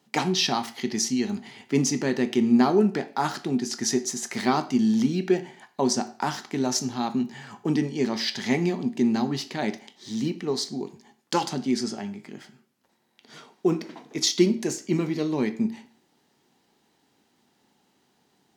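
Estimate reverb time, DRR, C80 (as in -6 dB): 0.40 s, 9.5 dB, 19.0 dB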